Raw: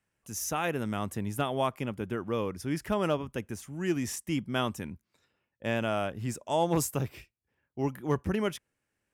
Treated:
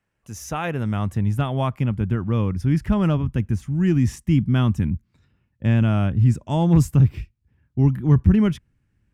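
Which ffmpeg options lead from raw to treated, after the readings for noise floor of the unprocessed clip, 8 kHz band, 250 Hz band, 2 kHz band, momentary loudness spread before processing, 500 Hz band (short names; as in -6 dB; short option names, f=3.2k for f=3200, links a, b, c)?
-83 dBFS, n/a, +12.0 dB, +2.5 dB, 9 LU, +1.5 dB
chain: -filter_complex "[0:a]lowpass=f=3k:p=1,asubboost=boost=11.5:cutoff=160,asplit=2[a][b];[b]alimiter=limit=-16.5dB:level=0:latency=1,volume=-2dB[c];[a][c]amix=inputs=2:normalize=0"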